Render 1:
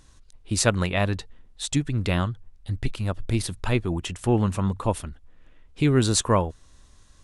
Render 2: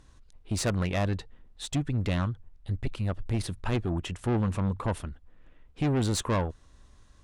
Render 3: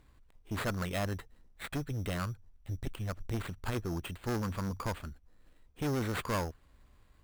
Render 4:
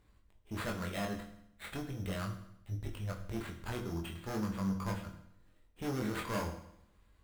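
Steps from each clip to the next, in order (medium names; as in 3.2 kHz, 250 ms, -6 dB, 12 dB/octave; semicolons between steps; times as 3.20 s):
treble shelf 3.5 kHz -9 dB; valve stage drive 22 dB, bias 0.35
sample-rate reducer 5.8 kHz, jitter 0%; dynamic bell 1.4 kHz, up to +5 dB, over -48 dBFS, Q 1.7; Chebyshev shaper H 2 -6 dB, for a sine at -16.5 dBFS; trim -5.5 dB
chorus 0.39 Hz, delay 20 ms, depth 4.6 ms; on a send at -4.5 dB: reverberation RT60 0.80 s, pre-delay 5 ms; on the sum: trim -1.5 dB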